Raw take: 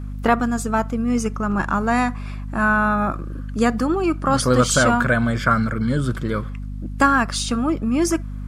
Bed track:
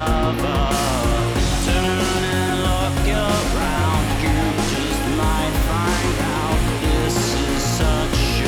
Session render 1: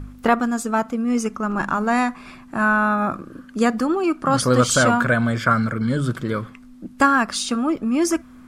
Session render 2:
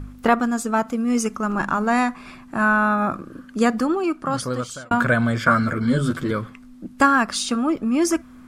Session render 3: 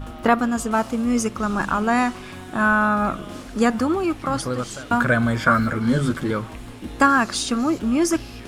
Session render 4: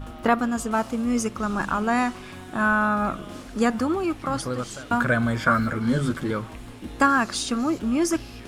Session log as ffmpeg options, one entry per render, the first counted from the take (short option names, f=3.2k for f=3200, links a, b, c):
-af "bandreject=f=50:t=h:w=4,bandreject=f=100:t=h:w=4,bandreject=f=150:t=h:w=4,bandreject=f=200:t=h:w=4"
-filter_complex "[0:a]asettb=1/sr,asplit=3[a][b][c];[a]atrim=end=0.874[d];[b]atrim=start=0.87:end=1.56,asetpts=PTS-STARTPTS,afade=t=in:d=0.004:c=qsin,afade=t=out:st=0.686:d=0.004:c=qsin,highshelf=f=4.7k:g=6[e];[c]atrim=start=1.556[f];[d][e]acrossfade=d=0.004:c1=hsin:c2=qsin[g];[g][f]acrossfade=d=0.004:c1=qsin:c2=hsin,asettb=1/sr,asplit=3[h][i][j];[h]atrim=end=5.454[k];[i]atrim=start=5.45:end=6.31,asetpts=PTS-STARTPTS,afade=t=in:d=0.004:c=qsin,afade=t=out:st=0.856:d=0.004:c=qsin,asplit=2[l][m];[m]adelay=12,volume=-2dB[n];[l][n]amix=inputs=2:normalize=0,atrim=end_sample=37926[o];[j]atrim=start=6.306[p];[k][o]acrossfade=d=0.004:c1=hsin:c2=qsin[q];[q][p]acrossfade=d=0.004:c1=qsin:c2=hsin,asplit=2[r][s];[r]atrim=end=4.91,asetpts=PTS-STARTPTS,afade=t=out:st=3.84:d=1.07[t];[s]atrim=start=4.91,asetpts=PTS-STARTPTS,afade=t=in:d=0.004:c=hsin[u];[t][u]concat=n=2:v=0:a=1"
-filter_complex "[1:a]volume=-19dB[a];[0:a][a]amix=inputs=2:normalize=0"
-af "volume=-3dB"